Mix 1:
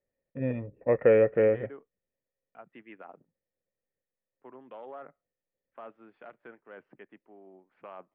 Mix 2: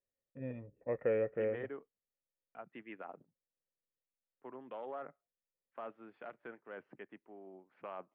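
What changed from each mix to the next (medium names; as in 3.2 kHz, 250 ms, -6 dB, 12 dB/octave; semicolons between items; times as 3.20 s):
first voice -12.0 dB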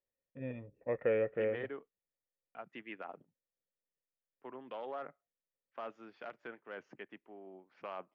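master: remove distance through air 420 m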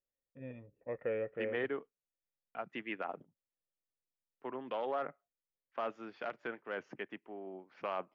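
first voice -5.0 dB; second voice +6.0 dB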